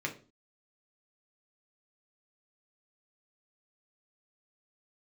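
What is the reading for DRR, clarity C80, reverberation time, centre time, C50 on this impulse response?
0.5 dB, 18.5 dB, 0.35 s, 11 ms, 13.0 dB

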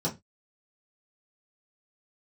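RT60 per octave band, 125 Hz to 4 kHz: 0.30, 0.25, 0.20, 0.20, 0.20, 0.20 s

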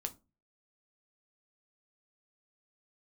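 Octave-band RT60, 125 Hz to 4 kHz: 0.50, 0.40, 0.30, 0.25, 0.20, 0.20 s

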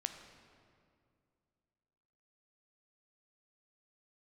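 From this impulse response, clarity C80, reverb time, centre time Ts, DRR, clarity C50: 9.0 dB, 2.3 s, 28 ms, 6.5 dB, 8.0 dB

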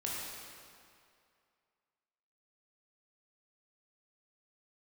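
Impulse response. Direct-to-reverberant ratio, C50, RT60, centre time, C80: -5.5 dB, -2.0 dB, 2.4 s, 0.135 s, -0.5 dB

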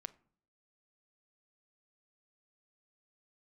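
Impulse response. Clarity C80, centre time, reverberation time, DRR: 24.5 dB, 2 ms, not exponential, 13.5 dB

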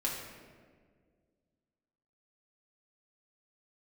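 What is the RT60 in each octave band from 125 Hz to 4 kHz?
2.4, 2.4, 2.1, 1.5, 1.4, 1.0 s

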